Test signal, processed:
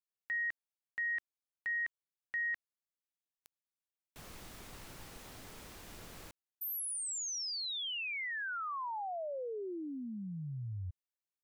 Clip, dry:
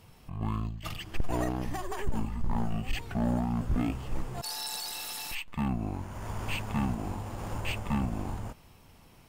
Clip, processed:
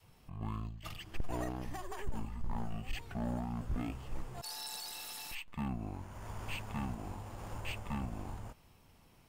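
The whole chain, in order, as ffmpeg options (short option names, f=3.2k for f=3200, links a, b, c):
-af "adynamicequalizer=threshold=0.00562:dfrequency=220:dqfactor=0.77:tfrequency=220:tqfactor=0.77:attack=5:release=100:ratio=0.375:range=1.5:mode=cutabove:tftype=bell,volume=-7dB"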